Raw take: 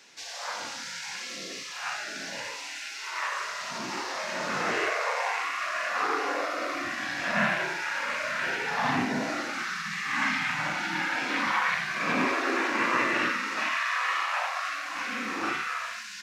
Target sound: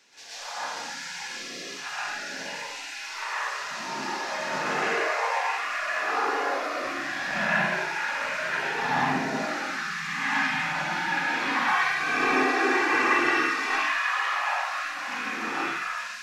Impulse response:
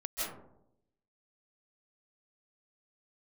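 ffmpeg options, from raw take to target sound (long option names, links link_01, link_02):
-filter_complex "[0:a]asettb=1/sr,asplit=3[link_01][link_02][link_03];[link_01]atrim=end=11.554[link_04];[link_02]atrim=start=11.55:end=13.76,asetpts=PTS-STARTPTS,afade=type=in:duration=0.004:curve=qsin,afade=type=out:start_time=2.206:duration=0.004:curve=qsin,aecho=1:1:2.6:0.82,atrim=end_sample=97461[link_05];[link_03]atrim=start=13.756[link_06];[link_04][link_05]acrossfade=duration=0.004:curve1=hsin:curve2=qsin[link_07];[link_07][link_06]acrossfade=duration=0.004:curve1=qsin:curve2=hsin[link_08];[1:a]atrim=start_sample=2205,afade=type=out:start_time=0.37:duration=0.01,atrim=end_sample=16758,asetrate=57330,aresample=44100[link_09];[link_08][link_09]afir=irnorm=-1:irlink=0"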